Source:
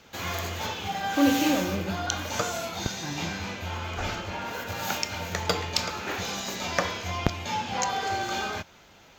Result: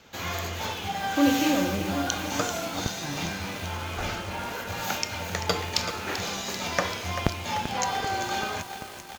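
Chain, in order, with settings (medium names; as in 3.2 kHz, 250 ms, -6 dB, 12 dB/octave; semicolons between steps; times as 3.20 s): vibrato 3.4 Hz 14 cents; delay 736 ms -19.5 dB; bit-crushed delay 389 ms, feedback 80%, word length 6-bit, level -10 dB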